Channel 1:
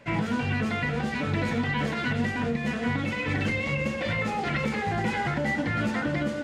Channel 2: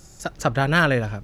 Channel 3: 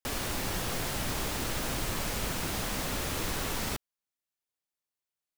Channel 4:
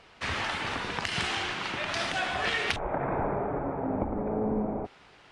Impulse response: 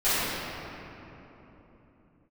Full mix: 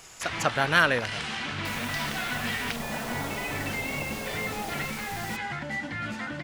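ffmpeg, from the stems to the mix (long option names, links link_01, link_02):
-filter_complex "[0:a]equalizer=frequency=460:width=2.1:gain=-6,adelay=250,volume=-5.5dB[link_01];[1:a]lowshelf=frequency=190:gain=-9,volume=-3dB,asplit=2[link_02][link_03];[2:a]adelay=1600,volume=-8.5dB[link_04];[3:a]acompressor=threshold=-47dB:ratio=1.5,volume=1dB[link_05];[link_03]apad=whole_len=294838[link_06];[link_01][link_06]sidechaincompress=threshold=-28dB:ratio=8:attack=16:release=718[link_07];[link_07][link_02][link_04][link_05]amix=inputs=4:normalize=0,tiltshelf=frequency=780:gain=-3.5"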